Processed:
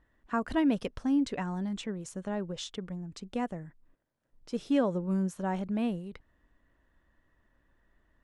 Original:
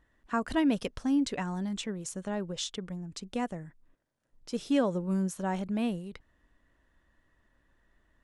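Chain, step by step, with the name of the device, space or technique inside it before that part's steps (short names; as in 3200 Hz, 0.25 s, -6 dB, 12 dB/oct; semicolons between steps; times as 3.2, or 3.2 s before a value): behind a face mask (high shelf 3500 Hz -8 dB)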